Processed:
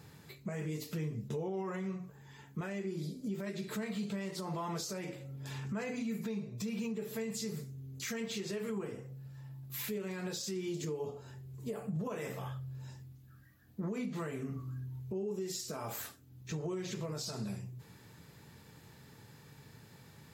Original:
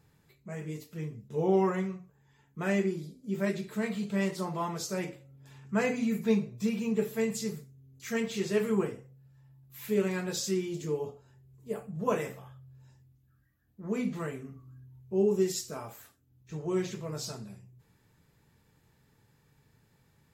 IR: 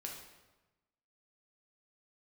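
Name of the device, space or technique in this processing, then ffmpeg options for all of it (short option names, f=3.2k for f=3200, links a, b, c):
broadcast voice chain: -af "highpass=83,deesser=0.7,acompressor=threshold=-42dB:ratio=4,equalizer=f=4.4k:t=o:w=0.77:g=3,alimiter=level_in=16.5dB:limit=-24dB:level=0:latency=1:release=149,volume=-16.5dB,volume=10.5dB"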